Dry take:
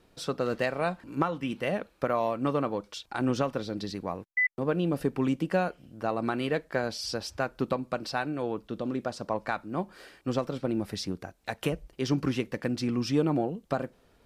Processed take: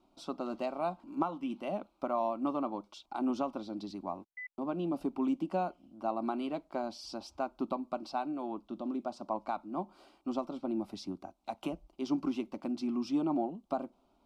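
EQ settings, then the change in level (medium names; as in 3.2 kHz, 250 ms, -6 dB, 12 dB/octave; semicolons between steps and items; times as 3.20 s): low-pass 1.6 kHz 6 dB/octave; bass shelf 160 Hz -10.5 dB; static phaser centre 470 Hz, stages 6; 0.0 dB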